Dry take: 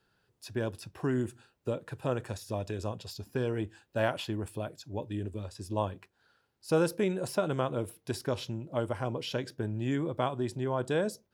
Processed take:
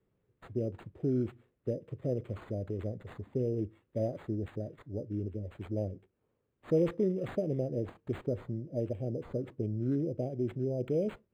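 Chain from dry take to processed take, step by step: inverse Chebyshev band-stop 950–3500 Hz, stop band 40 dB; decimation joined by straight lines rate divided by 8×

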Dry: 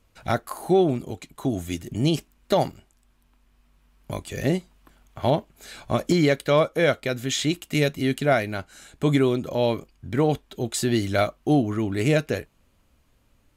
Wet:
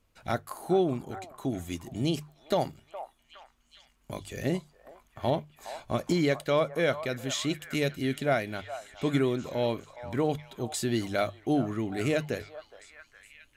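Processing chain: notches 50/100/150 Hz; delay with a stepping band-pass 0.415 s, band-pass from 900 Hz, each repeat 0.7 oct, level -9 dB; gain -6 dB

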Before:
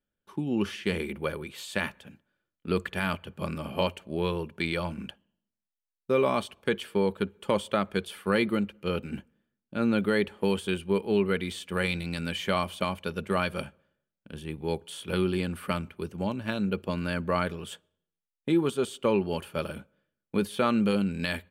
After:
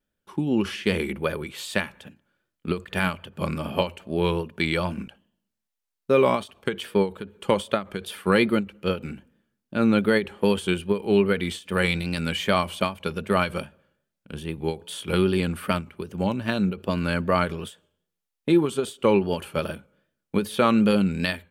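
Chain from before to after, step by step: vibrato 2.5 Hz 58 cents; ending taper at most 210 dB/s; gain +5.5 dB

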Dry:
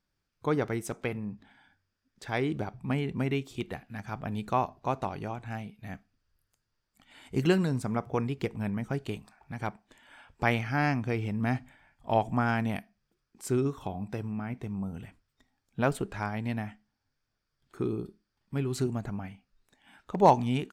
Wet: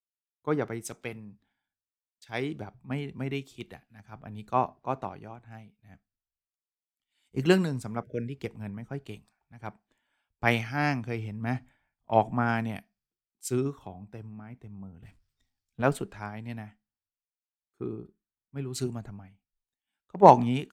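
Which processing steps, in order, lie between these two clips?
8.03–8.34 spectral delete 650–1400 Hz; 15.02–15.82 power-law curve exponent 0.7; three-band expander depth 100%; gain -3.5 dB

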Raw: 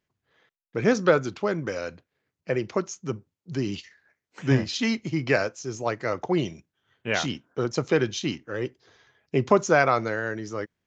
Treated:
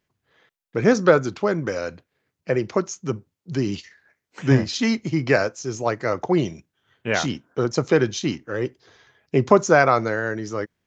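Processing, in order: dynamic EQ 2900 Hz, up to -5 dB, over -45 dBFS, Q 1.6; gain +4.5 dB

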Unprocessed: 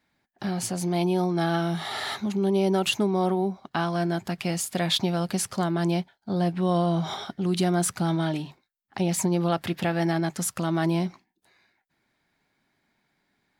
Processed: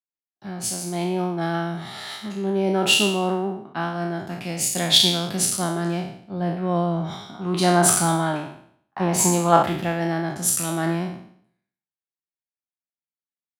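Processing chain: spectral trails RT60 1.04 s; 7.34–9.63 bell 990 Hz +8.5 dB 1.1 oct; three-band expander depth 100%

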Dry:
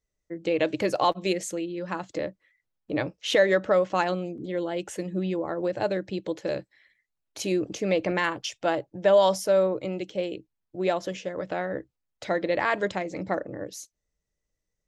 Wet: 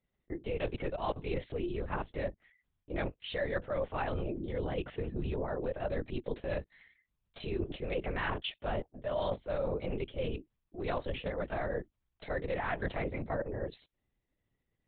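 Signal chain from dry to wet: LPC vocoder at 8 kHz whisper; reverse; compressor 8:1, threshold -31 dBFS, peak gain reduction 17.5 dB; reverse

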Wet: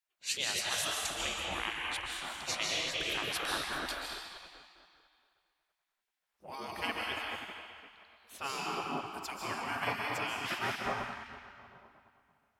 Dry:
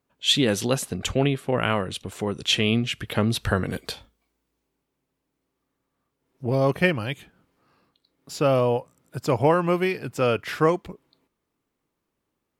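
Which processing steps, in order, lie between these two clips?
digital reverb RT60 2.4 s, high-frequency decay 0.85×, pre-delay 0.105 s, DRR -2.5 dB; spectral gate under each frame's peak -15 dB weak; gain -6.5 dB

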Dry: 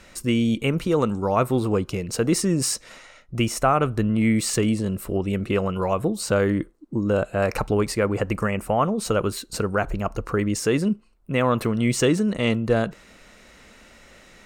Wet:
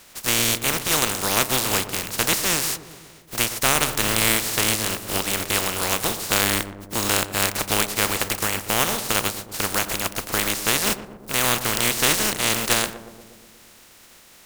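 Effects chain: spectral contrast lowered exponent 0.19; darkening echo 0.12 s, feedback 71%, low-pass 1000 Hz, level -11 dB

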